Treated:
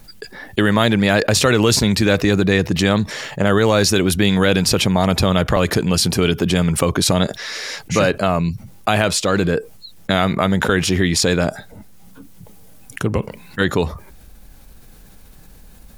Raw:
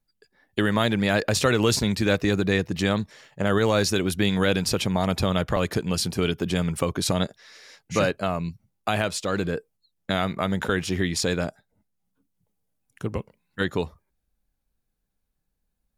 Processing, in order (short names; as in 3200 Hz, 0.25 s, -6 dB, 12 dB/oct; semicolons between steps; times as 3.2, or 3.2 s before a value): fast leveller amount 50%; gain +5 dB